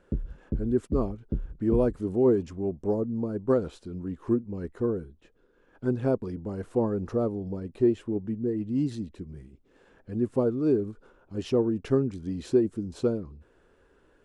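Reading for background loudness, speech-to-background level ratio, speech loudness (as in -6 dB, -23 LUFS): -36.0 LUFS, 7.5 dB, -28.5 LUFS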